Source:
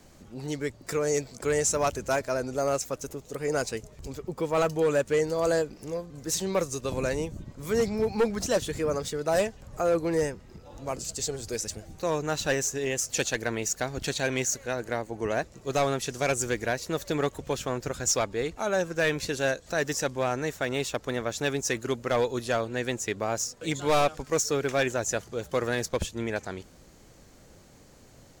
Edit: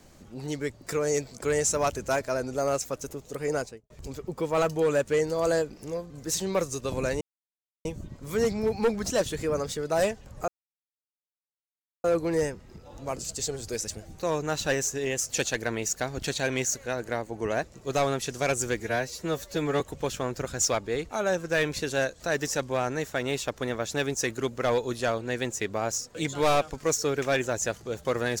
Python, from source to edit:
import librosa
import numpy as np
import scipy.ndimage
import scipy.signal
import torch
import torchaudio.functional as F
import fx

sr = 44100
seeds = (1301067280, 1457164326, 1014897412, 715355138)

y = fx.studio_fade_out(x, sr, start_s=3.48, length_s=0.42)
y = fx.edit(y, sr, fx.insert_silence(at_s=7.21, length_s=0.64),
    fx.insert_silence(at_s=9.84, length_s=1.56),
    fx.stretch_span(start_s=16.6, length_s=0.67, factor=1.5), tone=tone)